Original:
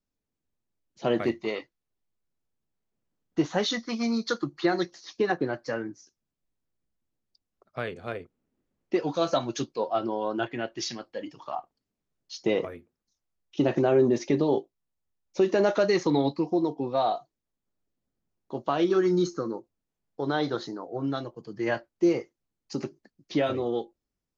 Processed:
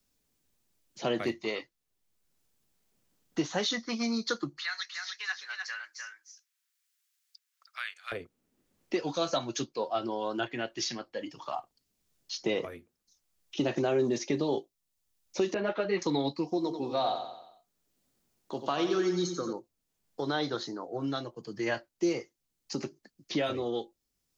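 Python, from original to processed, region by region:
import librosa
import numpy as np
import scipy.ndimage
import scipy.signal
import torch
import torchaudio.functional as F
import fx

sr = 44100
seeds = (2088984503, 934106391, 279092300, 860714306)

y = fx.chain(x, sr, fx.highpass(hz=1400.0, slope=24),
    fx.echo_single(ms=303, db=-6.5), at=(4.59, 8.12))
y = fx.chain(y, sr, fx.lowpass(hz=3000.0, slope=24),
    fx.ensemble(), at=(15.54, 16.02))
y = fx.chain(y, sr, fx.low_shelf(hz=75.0, db=-11.0),
    fx.echo_feedback(ms=90, feedback_pct=44, wet_db=-8), at=(16.57, 19.53))
y = fx.high_shelf(y, sr, hz=2600.0, db=10.0)
y = fx.band_squash(y, sr, depth_pct=40)
y = F.gain(torch.from_numpy(y), -5.0).numpy()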